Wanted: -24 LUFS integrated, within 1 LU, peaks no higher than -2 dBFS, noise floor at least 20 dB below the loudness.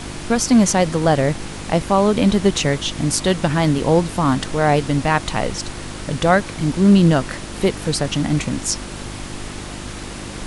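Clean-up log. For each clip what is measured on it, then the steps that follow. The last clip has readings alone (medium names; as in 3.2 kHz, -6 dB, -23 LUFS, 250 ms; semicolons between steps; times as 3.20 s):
hum 50 Hz; highest harmonic 350 Hz; hum level -34 dBFS; noise floor -32 dBFS; noise floor target -38 dBFS; loudness -18.0 LUFS; peak level -2.0 dBFS; loudness target -24.0 LUFS
-> de-hum 50 Hz, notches 7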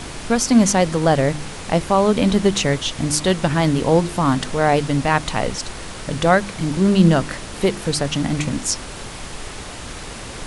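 hum not found; noise floor -33 dBFS; noise floor target -39 dBFS
-> noise print and reduce 6 dB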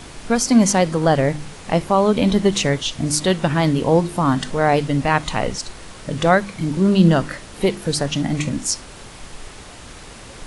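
noise floor -39 dBFS; loudness -18.5 LUFS; peak level -2.0 dBFS; loudness target -24.0 LUFS
-> trim -5.5 dB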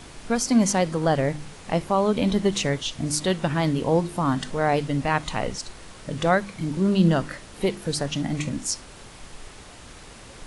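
loudness -24.0 LUFS; peak level -7.5 dBFS; noise floor -45 dBFS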